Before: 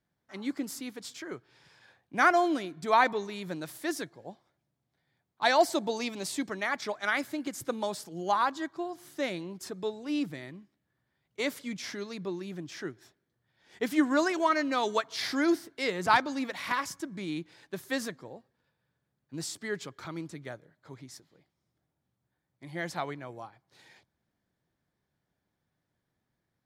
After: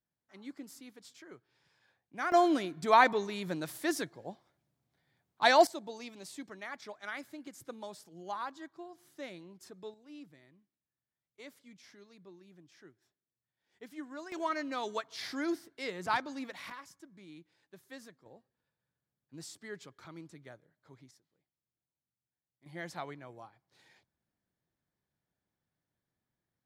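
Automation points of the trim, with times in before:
-12 dB
from 2.32 s +0.5 dB
from 5.67 s -12 dB
from 9.94 s -19 dB
from 14.32 s -8 dB
from 16.70 s -17 dB
from 18.26 s -10 dB
from 21.11 s -18 dB
from 22.66 s -7 dB

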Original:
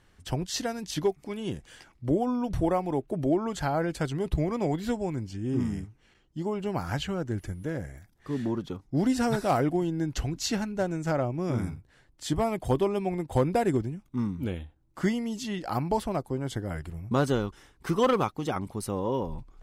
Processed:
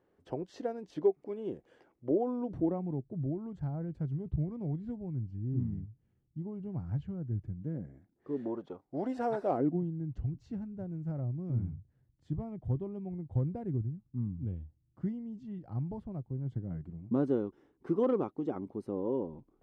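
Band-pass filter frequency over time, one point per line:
band-pass filter, Q 1.7
2.36 s 440 Hz
3.11 s 120 Hz
7.41 s 120 Hz
8.62 s 620 Hz
9.39 s 620 Hz
9.92 s 110 Hz
16.38 s 110 Hz
17.33 s 330 Hz

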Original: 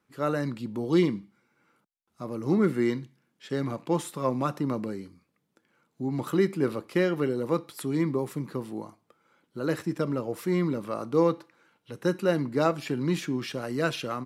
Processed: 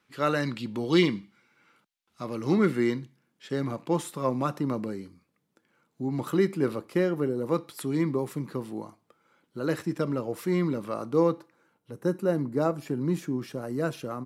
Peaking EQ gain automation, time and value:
peaking EQ 3.1 kHz 2.2 oct
2.52 s +9.5 dB
2.97 s -0.5 dB
6.72 s -0.5 dB
7.33 s -11.5 dB
7.55 s 0 dB
10.90 s 0 dB
11.94 s -12 dB

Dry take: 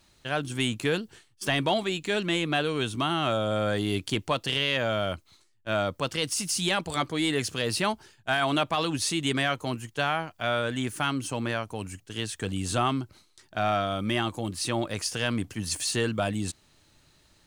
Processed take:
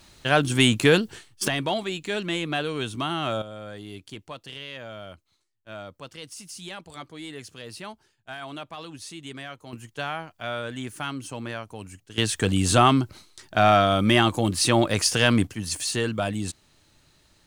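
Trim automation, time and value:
+9 dB
from 1.48 s -1 dB
from 3.42 s -12 dB
from 9.73 s -4 dB
from 12.18 s +8.5 dB
from 15.47 s +1 dB

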